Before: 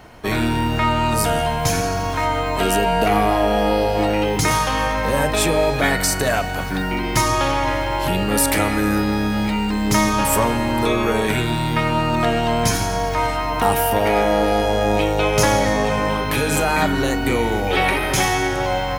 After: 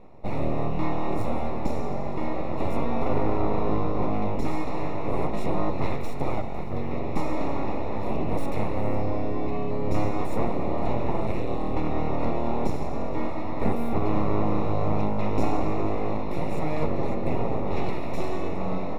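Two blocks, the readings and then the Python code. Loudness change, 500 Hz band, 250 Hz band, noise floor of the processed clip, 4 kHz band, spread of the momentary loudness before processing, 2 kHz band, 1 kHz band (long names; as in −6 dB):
−10.0 dB, −9.0 dB, −7.0 dB, −25 dBFS, −22.5 dB, 4 LU, −19.0 dB, −11.5 dB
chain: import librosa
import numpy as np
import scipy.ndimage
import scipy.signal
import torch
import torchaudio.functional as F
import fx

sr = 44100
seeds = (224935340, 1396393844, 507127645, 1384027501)

y = np.abs(x)
y = np.convolve(y, np.full(28, 1.0 / 28))[:len(y)]
y = y * 10.0 ** (-1.0 / 20.0)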